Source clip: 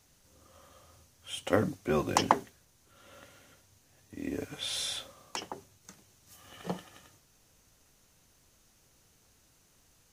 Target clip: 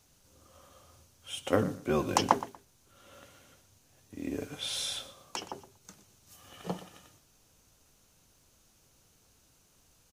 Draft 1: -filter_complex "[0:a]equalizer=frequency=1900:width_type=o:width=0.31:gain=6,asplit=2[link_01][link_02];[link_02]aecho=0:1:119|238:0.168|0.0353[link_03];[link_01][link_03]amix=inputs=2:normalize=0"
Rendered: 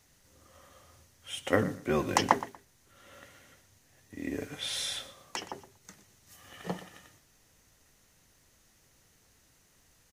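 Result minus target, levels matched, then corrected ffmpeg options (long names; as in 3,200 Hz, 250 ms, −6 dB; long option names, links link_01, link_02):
2,000 Hz band +4.5 dB
-filter_complex "[0:a]equalizer=frequency=1900:width_type=o:width=0.31:gain=-5,asplit=2[link_01][link_02];[link_02]aecho=0:1:119|238:0.168|0.0353[link_03];[link_01][link_03]amix=inputs=2:normalize=0"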